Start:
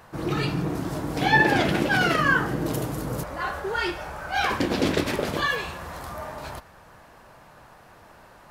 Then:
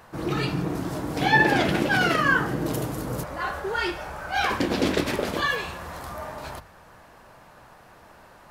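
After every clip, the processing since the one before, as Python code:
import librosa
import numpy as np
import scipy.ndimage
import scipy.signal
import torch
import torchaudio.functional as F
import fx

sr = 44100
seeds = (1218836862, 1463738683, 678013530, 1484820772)

y = fx.hum_notches(x, sr, base_hz=50, count=3)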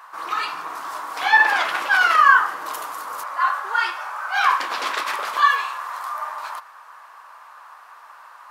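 y = fx.highpass_res(x, sr, hz=1100.0, q=4.1)
y = y * 10.0 ** (1.0 / 20.0)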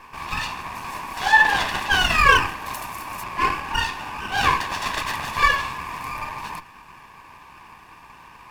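y = fx.lower_of_two(x, sr, delay_ms=1.1)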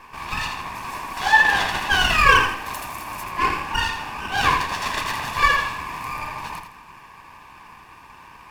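y = fx.echo_feedback(x, sr, ms=82, feedback_pct=31, wet_db=-7.5)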